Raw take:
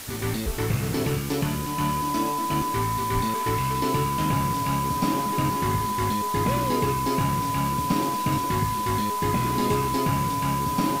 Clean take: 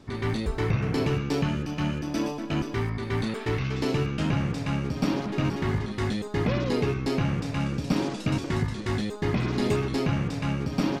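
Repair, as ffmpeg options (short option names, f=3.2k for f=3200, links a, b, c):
-filter_complex "[0:a]bandreject=f=1k:w=30,asplit=3[a][b][c];[a]afade=t=out:st=3.14:d=0.02[d];[b]highpass=f=140:w=0.5412,highpass=f=140:w=1.3066,afade=t=in:st=3.14:d=0.02,afade=t=out:st=3.26:d=0.02[e];[c]afade=t=in:st=3.26:d=0.02[f];[d][e][f]amix=inputs=3:normalize=0,afwtdn=0.014"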